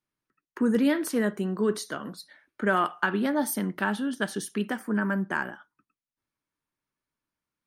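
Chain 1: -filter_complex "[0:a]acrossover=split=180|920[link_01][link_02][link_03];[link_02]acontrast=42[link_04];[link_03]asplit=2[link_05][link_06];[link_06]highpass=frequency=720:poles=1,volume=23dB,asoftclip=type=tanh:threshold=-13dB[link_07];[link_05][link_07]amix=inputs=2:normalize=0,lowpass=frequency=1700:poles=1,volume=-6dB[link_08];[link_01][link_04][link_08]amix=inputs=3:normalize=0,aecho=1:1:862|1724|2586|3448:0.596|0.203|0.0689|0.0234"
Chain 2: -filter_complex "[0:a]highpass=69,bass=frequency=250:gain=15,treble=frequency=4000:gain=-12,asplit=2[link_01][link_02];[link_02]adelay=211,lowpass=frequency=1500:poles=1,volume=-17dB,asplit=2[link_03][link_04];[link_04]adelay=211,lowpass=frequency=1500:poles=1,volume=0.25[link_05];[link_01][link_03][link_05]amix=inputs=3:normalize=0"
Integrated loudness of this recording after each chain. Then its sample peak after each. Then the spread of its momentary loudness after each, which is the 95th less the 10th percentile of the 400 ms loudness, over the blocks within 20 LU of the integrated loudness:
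−21.5, −21.5 LKFS; −7.0, −8.0 dBFS; 16, 11 LU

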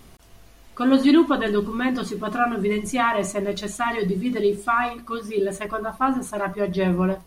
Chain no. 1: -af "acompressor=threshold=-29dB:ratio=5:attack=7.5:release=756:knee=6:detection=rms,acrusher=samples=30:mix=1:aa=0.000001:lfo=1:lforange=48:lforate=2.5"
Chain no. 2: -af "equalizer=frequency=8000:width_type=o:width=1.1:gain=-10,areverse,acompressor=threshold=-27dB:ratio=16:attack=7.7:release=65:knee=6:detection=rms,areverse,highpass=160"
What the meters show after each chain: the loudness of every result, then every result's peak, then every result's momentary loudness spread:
−34.5, −32.0 LKFS; −20.5, −19.0 dBFS; 5, 3 LU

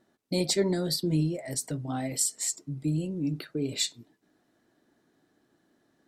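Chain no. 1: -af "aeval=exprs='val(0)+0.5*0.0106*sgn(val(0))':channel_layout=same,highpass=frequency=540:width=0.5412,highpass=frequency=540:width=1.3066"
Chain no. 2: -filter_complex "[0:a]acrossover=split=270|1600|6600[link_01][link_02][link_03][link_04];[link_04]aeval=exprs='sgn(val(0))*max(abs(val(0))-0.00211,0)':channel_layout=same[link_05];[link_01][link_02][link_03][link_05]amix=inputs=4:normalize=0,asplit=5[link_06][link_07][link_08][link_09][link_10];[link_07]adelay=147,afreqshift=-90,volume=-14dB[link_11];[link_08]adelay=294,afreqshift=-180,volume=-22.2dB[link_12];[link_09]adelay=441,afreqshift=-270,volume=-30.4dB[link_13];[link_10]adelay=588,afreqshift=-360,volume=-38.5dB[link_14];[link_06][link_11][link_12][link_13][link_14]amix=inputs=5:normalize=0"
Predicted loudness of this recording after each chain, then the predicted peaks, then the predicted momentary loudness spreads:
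−31.5, −29.5 LKFS; −12.0, −11.5 dBFS; 20, 7 LU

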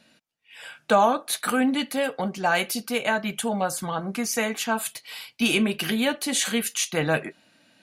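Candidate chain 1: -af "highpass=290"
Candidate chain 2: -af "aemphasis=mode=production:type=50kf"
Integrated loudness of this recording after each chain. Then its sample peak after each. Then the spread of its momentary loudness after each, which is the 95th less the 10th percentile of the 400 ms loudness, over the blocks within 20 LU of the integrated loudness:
−25.5, −21.5 LKFS; −8.5, −3.5 dBFS; 9, 9 LU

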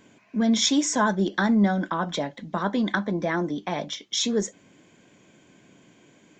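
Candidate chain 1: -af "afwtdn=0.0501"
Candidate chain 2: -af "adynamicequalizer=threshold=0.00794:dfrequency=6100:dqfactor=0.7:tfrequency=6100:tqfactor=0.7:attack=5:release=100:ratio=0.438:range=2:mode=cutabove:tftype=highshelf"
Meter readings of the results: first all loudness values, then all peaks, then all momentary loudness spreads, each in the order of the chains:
−25.5, −25.0 LKFS; −9.5, −9.5 dBFS; 12, 10 LU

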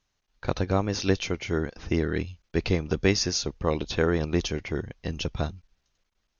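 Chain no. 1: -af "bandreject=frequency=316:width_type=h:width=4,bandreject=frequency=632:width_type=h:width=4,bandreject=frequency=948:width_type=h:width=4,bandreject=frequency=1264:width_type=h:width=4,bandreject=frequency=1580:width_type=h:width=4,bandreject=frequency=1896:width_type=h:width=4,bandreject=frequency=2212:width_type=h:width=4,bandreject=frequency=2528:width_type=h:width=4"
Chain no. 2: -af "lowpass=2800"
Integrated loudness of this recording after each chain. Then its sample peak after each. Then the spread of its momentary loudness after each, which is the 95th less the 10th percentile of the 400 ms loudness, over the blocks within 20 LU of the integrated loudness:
−28.0, −28.5 LKFS; −7.0, −7.5 dBFS; 8, 8 LU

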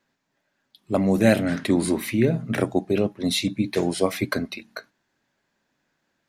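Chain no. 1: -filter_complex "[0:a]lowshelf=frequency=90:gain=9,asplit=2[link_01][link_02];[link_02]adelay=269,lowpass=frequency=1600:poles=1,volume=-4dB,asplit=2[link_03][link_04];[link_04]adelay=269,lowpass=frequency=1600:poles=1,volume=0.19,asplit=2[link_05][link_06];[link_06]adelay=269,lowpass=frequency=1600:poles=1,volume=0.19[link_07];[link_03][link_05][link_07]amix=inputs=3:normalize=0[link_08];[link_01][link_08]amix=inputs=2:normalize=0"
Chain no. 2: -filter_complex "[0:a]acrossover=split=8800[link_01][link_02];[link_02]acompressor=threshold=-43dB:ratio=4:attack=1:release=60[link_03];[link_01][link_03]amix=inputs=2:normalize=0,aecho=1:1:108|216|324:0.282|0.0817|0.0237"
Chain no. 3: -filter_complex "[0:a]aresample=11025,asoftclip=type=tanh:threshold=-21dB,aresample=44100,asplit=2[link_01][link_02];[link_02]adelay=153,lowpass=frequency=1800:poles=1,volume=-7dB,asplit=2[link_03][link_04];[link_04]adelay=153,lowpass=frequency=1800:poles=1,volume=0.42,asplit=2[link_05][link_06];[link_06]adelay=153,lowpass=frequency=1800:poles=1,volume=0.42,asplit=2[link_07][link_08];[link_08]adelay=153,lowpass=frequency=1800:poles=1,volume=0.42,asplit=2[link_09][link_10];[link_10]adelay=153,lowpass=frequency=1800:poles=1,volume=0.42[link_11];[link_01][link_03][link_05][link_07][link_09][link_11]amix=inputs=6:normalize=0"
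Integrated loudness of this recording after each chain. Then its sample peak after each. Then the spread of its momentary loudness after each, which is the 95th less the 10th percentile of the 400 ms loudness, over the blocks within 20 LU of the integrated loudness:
−21.0, −23.0, −27.5 LKFS; −3.0, −4.5, −16.5 dBFS; 10, 10, 7 LU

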